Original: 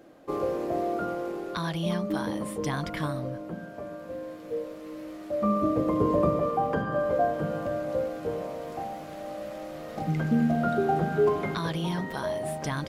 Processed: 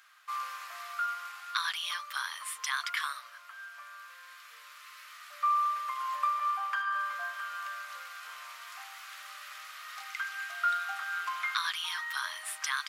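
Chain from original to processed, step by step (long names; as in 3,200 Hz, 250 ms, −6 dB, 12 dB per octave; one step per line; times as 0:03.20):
elliptic high-pass filter 1,200 Hz, stop band 70 dB
level +6 dB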